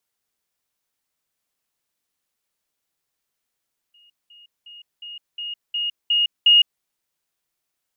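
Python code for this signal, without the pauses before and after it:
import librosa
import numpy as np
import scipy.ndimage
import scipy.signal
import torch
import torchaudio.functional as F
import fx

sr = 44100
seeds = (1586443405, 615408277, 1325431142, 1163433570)

y = fx.level_ladder(sr, hz=2860.0, from_db=-51.5, step_db=6.0, steps=8, dwell_s=0.16, gap_s=0.2)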